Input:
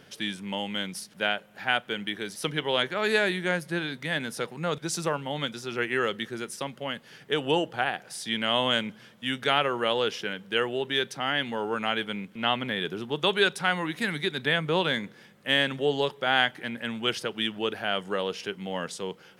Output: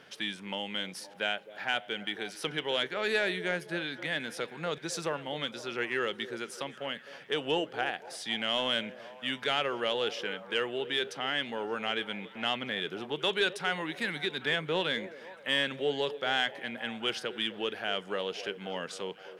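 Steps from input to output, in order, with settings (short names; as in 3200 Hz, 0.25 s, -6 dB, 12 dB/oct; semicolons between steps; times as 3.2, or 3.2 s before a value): dynamic EQ 1100 Hz, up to -7 dB, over -40 dBFS, Q 0.85; overdrive pedal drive 14 dB, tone 2800 Hz, clips at -7 dBFS; delay with a stepping band-pass 0.259 s, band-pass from 440 Hz, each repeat 0.7 oct, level -11.5 dB; gain -6.5 dB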